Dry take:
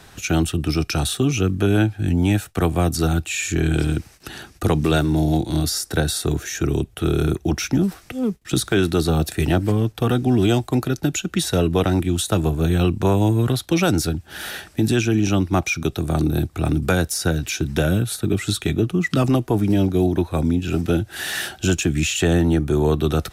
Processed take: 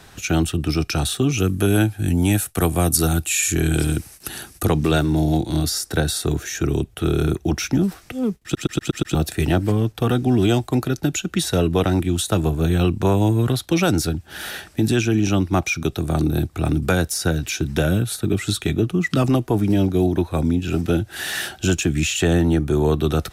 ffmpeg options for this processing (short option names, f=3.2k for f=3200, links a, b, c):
-filter_complex "[0:a]asettb=1/sr,asplit=3[a][b][c];[a]atrim=end=1.384[d];[b]atrim=start=1.38:end=4.65,asetpts=PTS-STARTPTS,afade=t=in:d=0.004:c=qsin,afade=t=out:st=3.266:d=0.004:c=qsin,equalizer=f=11k:t=o:w=1:g=15[e];[c]atrim=start=4.646[f];[d][e]acrossfade=d=0.004:c1=hsin:c2=qsin[g];[g][f]acrossfade=d=0.004:c1=qsin:c2=hsin,asplit=7[h][i][j][k][l][m][n];[h]atrim=end=8.552[o];[i]atrim=start=8.428:end=8.552[p];[j]atrim=start=8.428:end=8.552[q];[k]atrim=start=8.428:end=8.552[r];[l]atrim=start=8.428:end=8.552[s];[m]atrim=start=8.428:end=8.552[t];[n]atrim=start=9.148[u];[o][p]acrossfade=d=0.004:c1=hsin:c2=hsin[v];[v][q]acrossfade=d=0.004:c1=hsin:c2=hsin[w];[w][r]acrossfade=d=0.004:c1=hsin:c2=hsin[x];[x][s]acrossfade=d=0.004:c1=hsin:c2=hsin[y];[y][t]acrossfade=d=0.004:c1=hsin:c2=hsin[z];[z][u]acrossfade=d=0.004:c1=hsin:c2=hsin"